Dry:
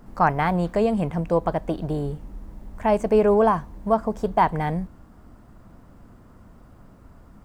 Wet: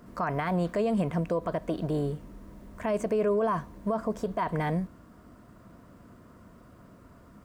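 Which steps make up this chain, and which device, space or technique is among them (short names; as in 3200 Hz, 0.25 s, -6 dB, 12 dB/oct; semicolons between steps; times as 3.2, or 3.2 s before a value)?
PA system with an anti-feedback notch (HPF 140 Hz 6 dB/oct; Butterworth band-stop 820 Hz, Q 5.5; limiter -20 dBFS, peak gain reduction 12 dB)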